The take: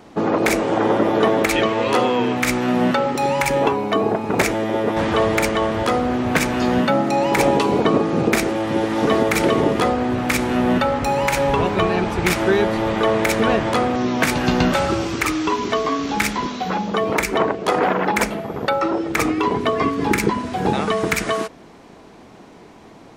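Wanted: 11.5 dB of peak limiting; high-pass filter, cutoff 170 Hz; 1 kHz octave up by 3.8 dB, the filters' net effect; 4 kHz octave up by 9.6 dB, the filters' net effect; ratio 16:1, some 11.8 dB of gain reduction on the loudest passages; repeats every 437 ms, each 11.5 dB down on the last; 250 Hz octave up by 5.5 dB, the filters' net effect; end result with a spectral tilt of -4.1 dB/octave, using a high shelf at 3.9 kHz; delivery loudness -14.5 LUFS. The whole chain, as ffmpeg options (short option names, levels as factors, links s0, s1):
-af "highpass=170,equalizer=f=250:t=o:g=7.5,equalizer=f=1000:t=o:g=3.5,highshelf=f=3900:g=7,equalizer=f=4000:t=o:g=8,acompressor=threshold=0.1:ratio=16,alimiter=limit=0.126:level=0:latency=1,aecho=1:1:437|874|1311:0.266|0.0718|0.0194,volume=3.98"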